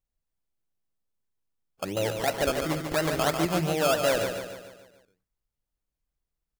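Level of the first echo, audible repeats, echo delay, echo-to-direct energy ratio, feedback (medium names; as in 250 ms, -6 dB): -6.5 dB, 5, 145 ms, -5.5 dB, 50%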